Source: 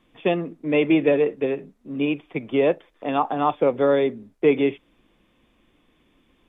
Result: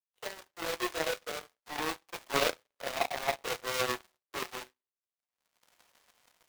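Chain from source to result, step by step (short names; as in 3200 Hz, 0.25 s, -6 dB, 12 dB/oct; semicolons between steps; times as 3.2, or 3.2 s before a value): half-waves squared off; Doppler pass-by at 2.42, 39 m/s, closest 29 m; recorder AGC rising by 25 dB/s; HPF 520 Hz 24 dB/oct; in parallel at +2 dB: compressor, threshold -40 dBFS, peak gain reduction 23 dB; on the sum: soft clip -24 dBFS, distortion -6 dB; reverse echo 51 ms -22.5 dB; on a send at -2.5 dB: reverb, pre-delay 3 ms; on the sum: power-law curve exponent 3; gain +7 dB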